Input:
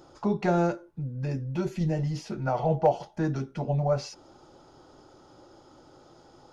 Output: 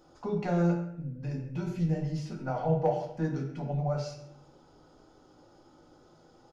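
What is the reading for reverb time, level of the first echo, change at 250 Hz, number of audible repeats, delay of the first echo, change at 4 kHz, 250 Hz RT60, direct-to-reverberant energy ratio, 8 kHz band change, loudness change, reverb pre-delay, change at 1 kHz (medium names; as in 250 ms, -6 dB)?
0.65 s, -15.5 dB, -2.0 dB, 1, 134 ms, -5.5 dB, 0.80 s, 0.5 dB, no reading, -3.0 dB, 4 ms, -5.5 dB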